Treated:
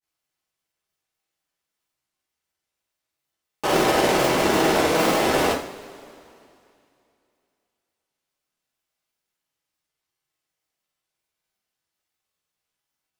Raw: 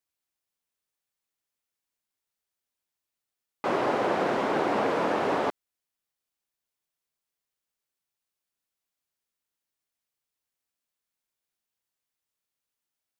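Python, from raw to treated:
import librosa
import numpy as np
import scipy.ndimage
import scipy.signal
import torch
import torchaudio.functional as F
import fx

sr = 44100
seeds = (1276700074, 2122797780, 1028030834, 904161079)

y = fx.halfwave_hold(x, sr)
y = fx.granulator(y, sr, seeds[0], grain_ms=100.0, per_s=20.0, spray_ms=100.0, spread_st=0)
y = fx.rev_double_slope(y, sr, seeds[1], early_s=0.43, late_s=2.7, knee_db=-20, drr_db=-2.0)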